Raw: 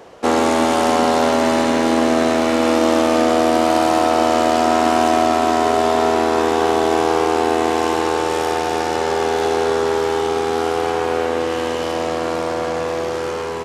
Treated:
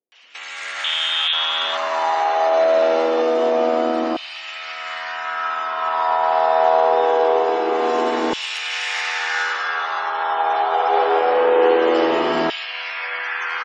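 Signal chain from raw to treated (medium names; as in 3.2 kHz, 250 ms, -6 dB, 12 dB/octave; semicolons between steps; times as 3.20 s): spectral gate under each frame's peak -30 dB strong; hum notches 60/120/180/240 Hz; compressor with a negative ratio -21 dBFS, ratio -1; Chebyshev shaper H 5 -40 dB, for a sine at -6 dBFS; 0.72–1.21 s: frequency inversion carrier 3.9 kHz; bands offset in time lows, highs 120 ms, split 270 Hz; gated-style reverb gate 460 ms rising, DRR -2 dB; LFO high-pass saw down 0.24 Hz 250–3000 Hz; trim -3 dB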